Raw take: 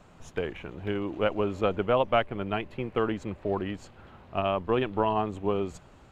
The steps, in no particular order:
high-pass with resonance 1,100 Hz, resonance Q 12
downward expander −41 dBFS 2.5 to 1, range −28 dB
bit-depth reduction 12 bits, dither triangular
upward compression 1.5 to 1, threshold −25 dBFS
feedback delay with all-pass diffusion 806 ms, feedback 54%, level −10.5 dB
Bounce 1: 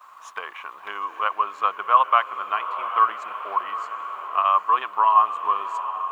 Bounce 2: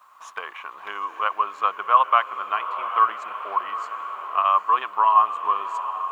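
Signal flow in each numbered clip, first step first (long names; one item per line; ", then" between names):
high-pass with resonance, then bit-depth reduction, then downward expander, then feedback delay with all-pass diffusion, then upward compression
feedback delay with all-pass diffusion, then downward expander, then high-pass with resonance, then upward compression, then bit-depth reduction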